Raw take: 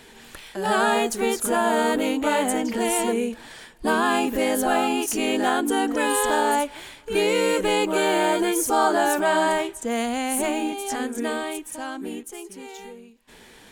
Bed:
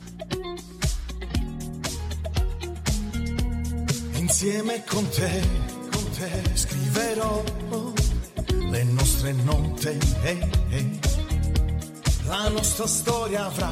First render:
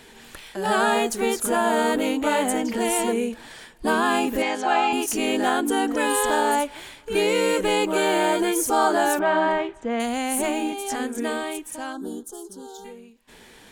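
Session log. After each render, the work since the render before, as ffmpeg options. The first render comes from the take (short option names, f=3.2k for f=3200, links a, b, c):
-filter_complex "[0:a]asettb=1/sr,asplit=3[a][b][c];[a]atrim=end=4.424[d];[b]atrim=start=4.42:end=4.93,asetpts=PTS-STARTPTS,afade=t=in:d=0.004:c=qsin,afade=t=out:st=0.506:d=0.004:c=qsin,highpass=200,equalizer=f=240:t=q:w=4:g=-10,equalizer=f=550:t=q:w=4:g=-9,equalizer=f=890:t=q:w=4:g=7,equalizer=f=2.4k:t=q:w=4:g=5,lowpass=f=6.5k:w=0.5412,lowpass=f=6.5k:w=1.3066[e];[c]atrim=start=4.926[f];[d][e]acrossfade=d=0.004:c1=hsin:c2=qsin[g];[g][f]acrossfade=d=0.004:c1=qsin:c2=hsin,asettb=1/sr,asplit=3[h][i][j];[h]atrim=end=9.194[k];[i]atrim=start=9.19:end=10,asetpts=PTS-STARTPTS,afade=t=in:d=0.004:c=qsin,afade=t=out:st=0.806:d=0.004:c=qsin,lowpass=2.6k[l];[j]atrim=start=9.996[m];[k][l]acrossfade=d=0.004:c1=hsin:c2=qsin[n];[n][m]acrossfade=d=0.004:c1=qsin:c2=hsin,asplit=3[o][p][q];[o]afade=t=out:st=11.92:d=0.02[r];[p]asuperstop=centerf=2300:order=8:qfactor=1.3,afade=t=in:st=11.92:d=0.02,afade=t=out:st=12.84:d=0.02[s];[q]afade=t=in:st=12.84:d=0.02[t];[r][s][t]amix=inputs=3:normalize=0"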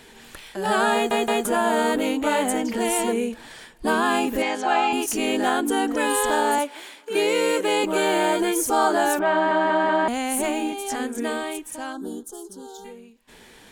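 -filter_complex "[0:a]asettb=1/sr,asplit=3[a][b][c];[a]atrim=end=6.584[d];[b]atrim=start=6.58:end=7.84,asetpts=PTS-STARTPTS,afade=t=in:d=0.004:c=qsin,afade=t=out:st=1.256:d=0.004:c=qsin,highpass=f=240:w=0.5412,highpass=f=240:w=1.3066[e];[c]atrim=start=7.836[f];[d][e]acrossfade=d=0.004:c1=hsin:c2=qsin[g];[g][f]acrossfade=d=0.004:c1=qsin:c2=hsin,asplit=8[h][i][j][k][l][m][n][o];[h]atrim=end=1.112[p];[i]atrim=start=0.938:end=1.112[q];[j]atrim=start=0.938:end=1.112[r];[k]atrim=start=1.448:end=9.512[s];[l]atrim=start=9.318:end=9.512[t];[m]atrim=start=9.318:end=9.512[u];[n]atrim=start=9.318:end=9.512[v];[o]atrim=start=10.078[w];[p][q]acrossfade=d=0.004:c1=hsin:c2=hsin[x];[x][r]acrossfade=d=0.004:c1=hsin:c2=hsin[y];[y][s]acrossfade=d=0.004:c1=hsin:c2=hsin[z];[z][t]acrossfade=d=0.004:c1=hsin:c2=hsin[aa];[aa][u]acrossfade=d=0.004:c1=hsin:c2=hsin[ab];[ab][v]acrossfade=d=0.004:c1=hsin:c2=hsin[ac];[ac][w]acrossfade=d=0.004:c1=hsin:c2=hsin"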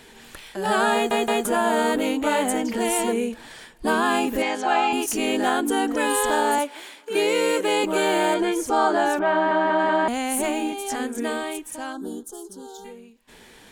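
-filter_complex "[0:a]asettb=1/sr,asplit=3[a][b][c];[a]atrim=end=8.344[d];[b]atrim=start=8.34:end=9.79,asetpts=PTS-STARTPTS,afade=t=in:d=0.004:c=qsin,afade=t=out:st=1.446:d=0.004:c=qsin,equalizer=f=15k:t=o:w=1.2:g=-14.5[e];[c]atrim=start=9.786[f];[d][e]acrossfade=d=0.004:c1=hsin:c2=qsin[g];[g][f]acrossfade=d=0.004:c1=qsin:c2=hsin"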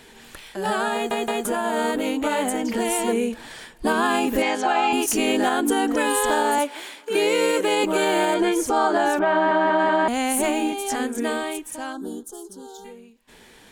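-af "alimiter=limit=-14dB:level=0:latency=1:release=135,dynaudnorm=f=340:g=17:m=3.5dB"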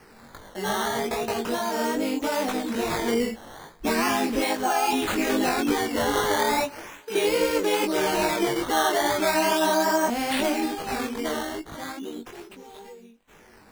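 -af "acrusher=samples=12:mix=1:aa=0.000001:lfo=1:lforange=12:lforate=0.37,flanger=delay=18.5:depth=3.5:speed=2.4"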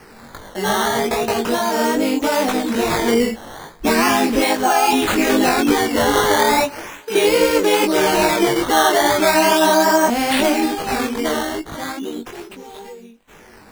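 -af "volume=8dB"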